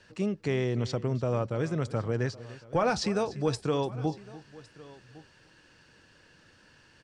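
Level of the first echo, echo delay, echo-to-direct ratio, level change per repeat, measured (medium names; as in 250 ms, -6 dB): -17.5 dB, 294 ms, -16.0 dB, no regular repeats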